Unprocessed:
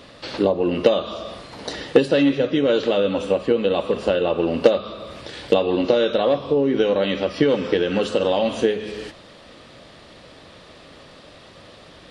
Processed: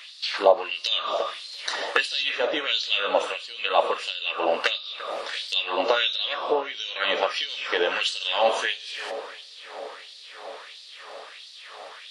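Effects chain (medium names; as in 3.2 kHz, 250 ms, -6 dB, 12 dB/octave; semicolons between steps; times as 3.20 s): on a send: tape echo 341 ms, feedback 87%, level -14 dB, low-pass 2.1 kHz; on the sum: LFO high-pass sine 1.5 Hz 730–4400 Hz; trim +2 dB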